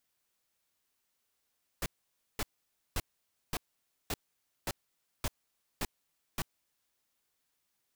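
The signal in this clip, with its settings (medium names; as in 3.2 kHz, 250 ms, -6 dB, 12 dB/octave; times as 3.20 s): noise bursts pink, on 0.04 s, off 0.53 s, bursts 9, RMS -33 dBFS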